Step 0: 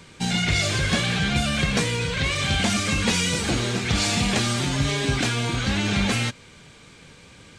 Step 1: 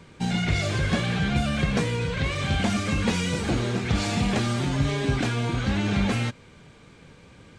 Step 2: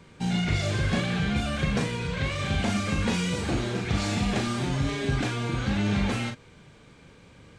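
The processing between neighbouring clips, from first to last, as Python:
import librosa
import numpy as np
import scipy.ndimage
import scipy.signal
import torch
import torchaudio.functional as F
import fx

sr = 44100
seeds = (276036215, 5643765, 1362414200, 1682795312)

y1 = fx.high_shelf(x, sr, hz=2100.0, db=-10.5)
y2 = fx.doubler(y1, sr, ms=39.0, db=-5.5)
y2 = y2 * librosa.db_to_amplitude(-3.0)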